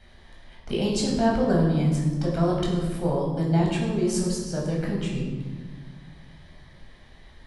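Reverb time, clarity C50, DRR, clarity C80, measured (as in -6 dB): 1.6 s, 2.5 dB, -3.5 dB, 4.5 dB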